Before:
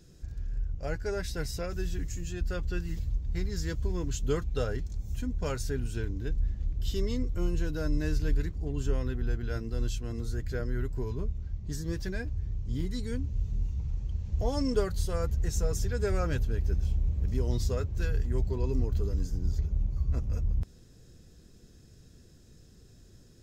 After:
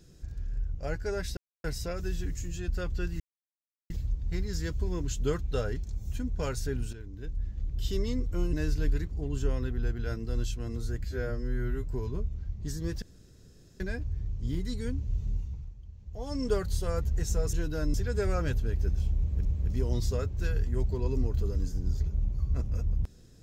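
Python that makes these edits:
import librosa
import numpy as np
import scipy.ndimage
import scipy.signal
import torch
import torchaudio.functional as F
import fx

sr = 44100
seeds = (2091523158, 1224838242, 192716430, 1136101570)

y = fx.edit(x, sr, fx.insert_silence(at_s=1.37, length_s=0.27),
    fx.insert_silence(at_s=2.93, length_s=0.7),
    fx.fade_in_from(start_s=5.96, length_s=0.94, floor_db=-13.0),
    fx.move(start_s=7.56, length_s=0.41, to_s=15.79),
    fx.stretch_span(start_s=10.48, length_s=0.4, factor=2.0),
    fx.insert_room_tone(at_s=12.06, length_s=0.78),
    fx.fade_down_up(start_s=13.55, length_s=1.28, db=-13.5, fade_s=0.45),
    fx.repeat(start_s=17.03, length_s=0.27, count=2), tone=tone)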